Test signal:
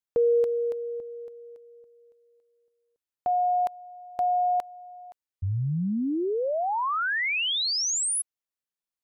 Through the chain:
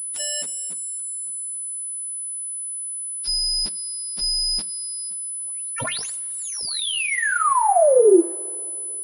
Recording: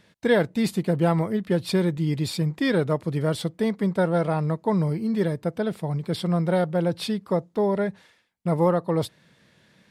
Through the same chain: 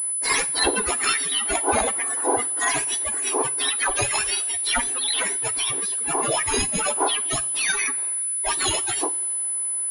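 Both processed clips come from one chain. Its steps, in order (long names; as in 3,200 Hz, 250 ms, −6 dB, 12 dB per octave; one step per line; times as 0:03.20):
frequency axis turned over on the octave scale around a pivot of 1,900 Hz
coupled-rooms reverb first 0.38 s, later 2.9 s, from −18 dB, DRR 14 dB
switching amplifier with a slow clock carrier 10,000 Hz
level +8 dB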